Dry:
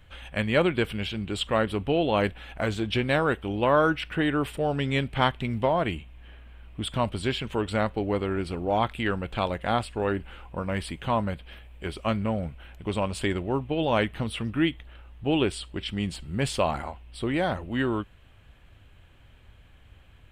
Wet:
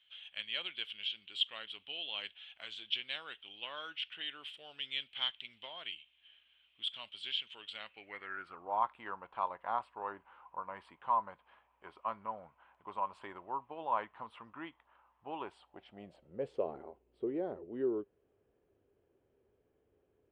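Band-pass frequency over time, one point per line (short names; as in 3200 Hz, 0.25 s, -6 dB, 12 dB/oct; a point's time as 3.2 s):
band-pass, Q 5.5
7.77 s 3200 Hz
8.69 s 1000 Hz
15.38 s 1000 Hz
16.7 s 410 Hz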